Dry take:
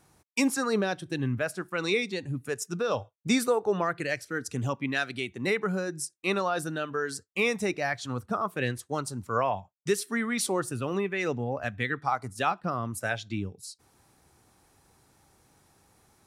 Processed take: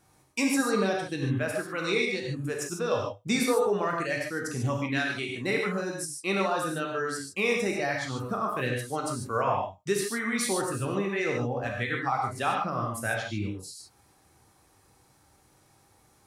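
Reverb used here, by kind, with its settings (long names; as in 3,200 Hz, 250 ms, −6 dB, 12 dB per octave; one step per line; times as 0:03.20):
reverb whose tail is shaped and stops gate 170 ms flat, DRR −1 dB
level −2.5 dB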